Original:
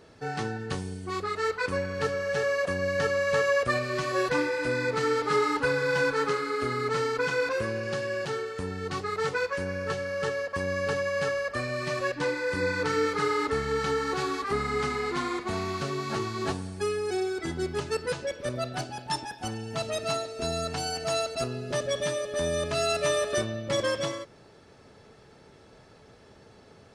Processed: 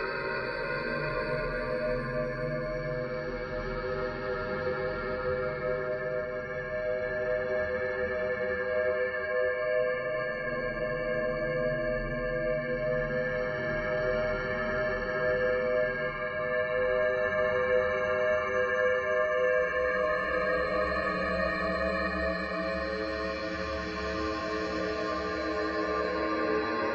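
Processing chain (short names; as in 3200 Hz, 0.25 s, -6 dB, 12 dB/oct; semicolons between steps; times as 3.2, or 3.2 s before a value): ring modulator 56 Hz; spectral gate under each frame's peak -25 dB strong; Paulstretch 10×, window 0.50 s, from 1.58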